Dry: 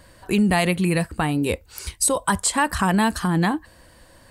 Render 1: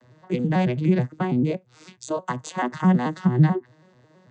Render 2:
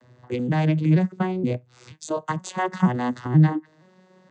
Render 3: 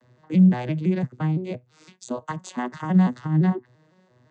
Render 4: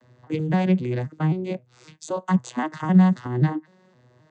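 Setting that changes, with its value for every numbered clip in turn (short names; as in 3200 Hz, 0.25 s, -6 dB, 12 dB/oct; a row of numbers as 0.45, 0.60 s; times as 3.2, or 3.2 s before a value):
arpeggiated vocoder, a note every: 0.109, 0.476, 0.17, 0.262 s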